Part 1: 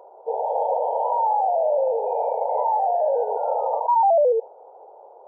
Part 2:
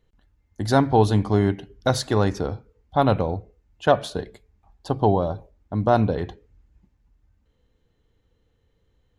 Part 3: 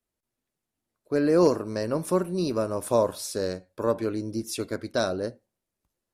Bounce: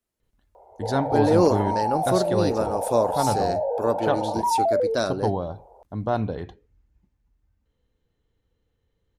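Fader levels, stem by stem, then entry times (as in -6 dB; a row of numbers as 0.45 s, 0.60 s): -4.5 dB, -6.0 dB, +1.0 dB; 0.55 s, 0.20 s, 0.00 s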